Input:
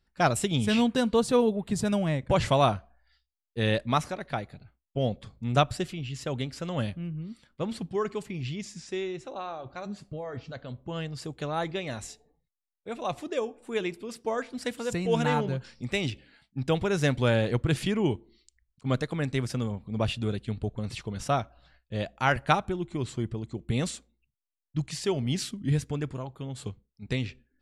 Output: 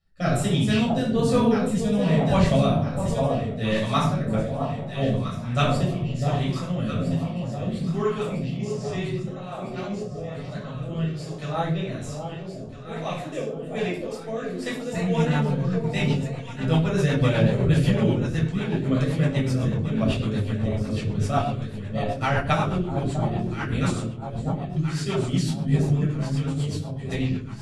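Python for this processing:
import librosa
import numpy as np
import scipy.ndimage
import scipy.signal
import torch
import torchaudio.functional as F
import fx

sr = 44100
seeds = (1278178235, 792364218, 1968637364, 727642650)

y = fx.echo_alternate(x, sr, ms=653, hz=940.0, feedback_pct=71, wet_db=-4.5)
y = fx.room_shoebox(y, sr, seeds[0], volume_m3=690.0, walls='furnished', distance_m=6.4)
y = fx.rotary_switch(y, sr, hz=1.2, then_hz=8.0, switch_at_s=14.54)
y = y * librosa.db_to_amplitude(-4.5)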